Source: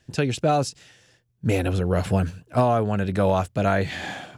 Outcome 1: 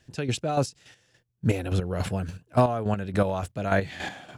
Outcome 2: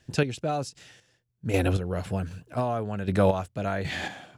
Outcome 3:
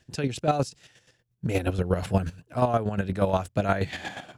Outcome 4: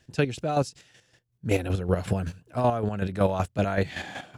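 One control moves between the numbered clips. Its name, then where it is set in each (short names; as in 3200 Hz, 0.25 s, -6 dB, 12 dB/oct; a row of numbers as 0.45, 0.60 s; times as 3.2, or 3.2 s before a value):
chopper, rate: 3.5, 1.3, 8.4, 5.3 Hz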